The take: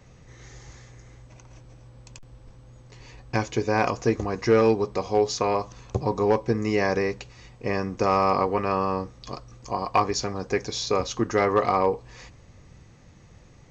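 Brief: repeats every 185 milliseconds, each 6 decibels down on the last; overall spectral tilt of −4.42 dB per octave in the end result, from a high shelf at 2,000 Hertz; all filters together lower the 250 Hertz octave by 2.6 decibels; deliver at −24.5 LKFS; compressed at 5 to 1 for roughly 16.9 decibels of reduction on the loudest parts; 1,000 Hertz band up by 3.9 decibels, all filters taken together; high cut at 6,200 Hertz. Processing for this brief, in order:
low-pass filter 6,200 Hz
parametric band 250 Hz −4 dB
parametric band 1,000 Hz +6 dB
high-shelf EQ 2,000 Hz −3.5 dB
downward compressor 5 to 1, threshold −34 dBFS
repeating echo 185 ms, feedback 50%, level −6 dB
level +12.5 dB

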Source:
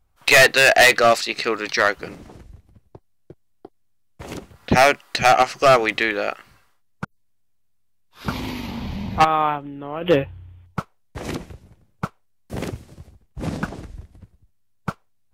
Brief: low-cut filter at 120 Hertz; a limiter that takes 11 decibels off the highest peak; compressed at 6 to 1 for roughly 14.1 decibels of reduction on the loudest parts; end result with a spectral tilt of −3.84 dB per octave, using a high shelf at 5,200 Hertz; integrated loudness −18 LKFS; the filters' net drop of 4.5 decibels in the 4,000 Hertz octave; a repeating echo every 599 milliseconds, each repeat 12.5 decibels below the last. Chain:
high-pass filter 120 Hz
parametric band 4,000 Hz −3 dB
high-shelf EQ 5,200 Hz −6.5 dB
downward compressor 6 to 1, threshold −26 dBFS
brickwall limiter −23.5 dBFS
repeating echo 599 ms, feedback 24%, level −12.5 dB
level +17 dB

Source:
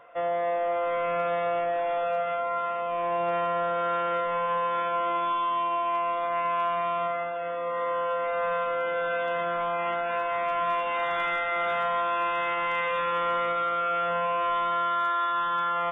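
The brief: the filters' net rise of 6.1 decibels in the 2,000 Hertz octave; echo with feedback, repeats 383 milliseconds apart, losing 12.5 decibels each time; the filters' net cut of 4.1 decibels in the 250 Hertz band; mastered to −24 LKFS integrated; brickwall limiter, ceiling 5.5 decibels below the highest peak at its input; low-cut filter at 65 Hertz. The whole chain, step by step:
high-pass filter 65 Hz
parametric band 250 Hz −8 dB
parametric band 2,000 Hz +7.5 dB
brickwall limiter −21 dBFS
repeating echo 383 ms, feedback 24%, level −12.5 dB
level +3 dB

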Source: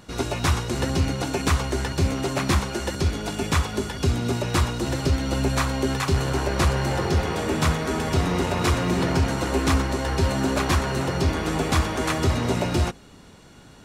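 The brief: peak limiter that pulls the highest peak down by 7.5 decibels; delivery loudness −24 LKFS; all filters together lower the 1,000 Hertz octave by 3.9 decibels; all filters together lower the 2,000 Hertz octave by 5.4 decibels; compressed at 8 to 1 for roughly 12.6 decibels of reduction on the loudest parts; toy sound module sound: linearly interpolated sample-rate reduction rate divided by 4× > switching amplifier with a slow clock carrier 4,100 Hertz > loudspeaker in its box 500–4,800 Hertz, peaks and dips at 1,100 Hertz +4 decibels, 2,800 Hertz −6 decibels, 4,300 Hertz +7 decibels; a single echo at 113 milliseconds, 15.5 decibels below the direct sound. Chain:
parametric band 1,000 Hz −5.5 dB
parametric band 2,000 Hz −4.5 dB
downward compressor 8 to 1, threshold −30 dBFS
brickwall limiter −28 dBFS
single-tap delay 113 ms −15.5 dB
linearly interpolated sample-rate reduction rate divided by 4×
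switching amplifier with a slow clock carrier 4,100 Hz
loudspeaker in its box 500–4,800 Hz, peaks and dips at 1,100 Hz +4 dB, 2,800 Hz −6 dB, 4,300 Hz +7 dB
level +18 dB

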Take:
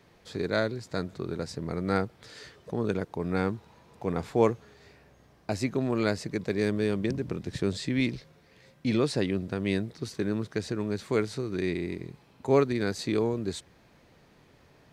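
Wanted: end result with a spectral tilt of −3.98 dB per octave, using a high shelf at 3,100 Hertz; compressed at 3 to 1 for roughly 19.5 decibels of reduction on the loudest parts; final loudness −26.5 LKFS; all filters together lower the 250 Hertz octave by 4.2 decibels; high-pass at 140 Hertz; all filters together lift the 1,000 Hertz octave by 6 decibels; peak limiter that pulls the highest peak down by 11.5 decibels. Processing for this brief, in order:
high-pass filter 140 Hz
parametric band 250 Hz −5.5 dB
parametric band 1,000 Hz +7.5 dB
high-shelf EQ 3,100 Hz +6 dB
downward compressor 3 to 1, threshold −44 dBFS
level +22 dB
brickwall limiter −13.5 dBFS

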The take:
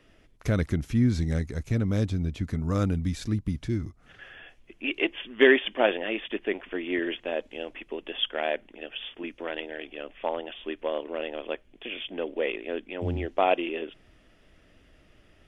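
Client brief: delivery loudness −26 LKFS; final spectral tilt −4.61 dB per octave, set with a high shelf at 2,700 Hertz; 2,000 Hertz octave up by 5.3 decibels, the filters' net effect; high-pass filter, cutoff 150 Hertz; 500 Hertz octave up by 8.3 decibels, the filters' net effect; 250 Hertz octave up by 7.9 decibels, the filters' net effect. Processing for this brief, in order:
high-pass filter 150 Hz
parametric band 250 Hz +8 dB
parametric band 500 Hz +8 dB
parametric band 2,000 Hz +8 dB
high-shelf EQ 2,700 Hz −5.5 dB
level −3.5 dB

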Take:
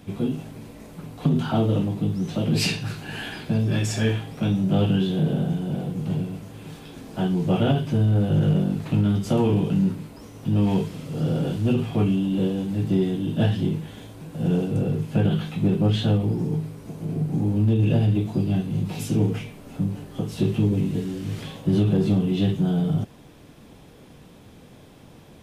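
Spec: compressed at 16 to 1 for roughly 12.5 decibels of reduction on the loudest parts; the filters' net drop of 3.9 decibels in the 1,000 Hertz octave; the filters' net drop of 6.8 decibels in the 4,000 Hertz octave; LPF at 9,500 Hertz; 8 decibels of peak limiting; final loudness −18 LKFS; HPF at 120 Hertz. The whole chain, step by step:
high-pass filter 120 Hz
low-pass filter 9,500 Hz
parametric band 1,000 Hz −5.5 dB
parametric band 4,000 Hz −9 dB
downward compressor 16 to 1, threshold −30 dBFS
level +18.5 dB
brickwall limiter −9 dBFS

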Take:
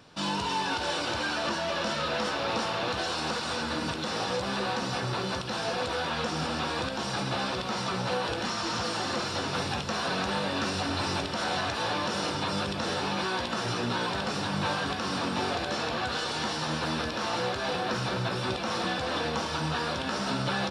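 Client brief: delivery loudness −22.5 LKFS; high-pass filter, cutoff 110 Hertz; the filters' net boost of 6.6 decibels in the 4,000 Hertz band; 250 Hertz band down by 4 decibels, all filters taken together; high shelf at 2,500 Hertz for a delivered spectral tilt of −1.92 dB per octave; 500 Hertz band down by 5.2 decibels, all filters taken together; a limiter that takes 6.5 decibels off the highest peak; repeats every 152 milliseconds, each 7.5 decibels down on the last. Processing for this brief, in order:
high-pass filter 110 Hz
parametric band 250 Hz −3.5 dB
parametric band 500 Hz −6 dB
high-shelf EQ 2,500 Hz +6 dB
parametric band 4,000 Hz +3 dB
brickwall limiter −21.5 dBFS
repeating echo 152 ms, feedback 42%, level −7.5 dB
level +6 dB

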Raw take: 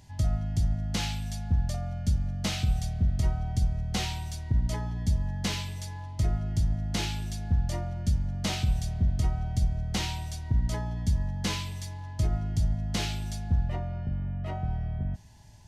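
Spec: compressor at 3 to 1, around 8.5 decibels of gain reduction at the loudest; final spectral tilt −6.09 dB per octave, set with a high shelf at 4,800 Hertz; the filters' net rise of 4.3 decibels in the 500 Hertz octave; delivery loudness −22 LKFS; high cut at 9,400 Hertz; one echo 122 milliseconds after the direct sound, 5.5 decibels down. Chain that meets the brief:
low-pass filter 9,400 Hz
parametric band 500 Hz +6 dB
high-shelf EQ 4,800 Hz −6.5 dB
downward compressor 3 to 1, threshold −32 dBFS
single-tap delay 122 ms −5.5 dB
level +13.5 dB

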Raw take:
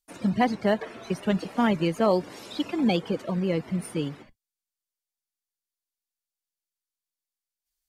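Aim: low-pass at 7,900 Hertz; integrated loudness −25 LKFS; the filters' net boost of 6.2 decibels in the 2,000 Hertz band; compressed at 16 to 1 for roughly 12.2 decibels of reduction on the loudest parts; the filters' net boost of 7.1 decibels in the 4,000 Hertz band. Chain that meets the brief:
low-pass filter 7,900 Hz
parametric band 2,000 Hz +5.5 dB
parametric band 4,000 Hz +7.5 dB
downward compressor 16 to 1, threshold −27 dBFS
level +8.5 dB

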